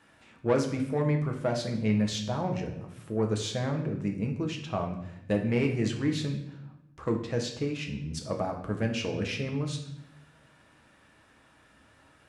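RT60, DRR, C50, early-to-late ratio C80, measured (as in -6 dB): 0.80 s, 2.0 dB, 7.5 dB, 10.5 dB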